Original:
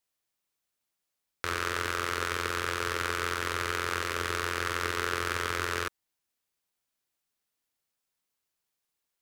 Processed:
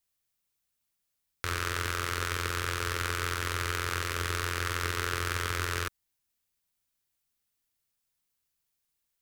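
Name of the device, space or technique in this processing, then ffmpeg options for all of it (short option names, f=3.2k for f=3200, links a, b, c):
smiley-face EQ: -af "lowshelf=f=170:g=8.5,equalizer=f=490:t=o:w=2.8:g=-4.5,highshelf=f=9.6k:g=5"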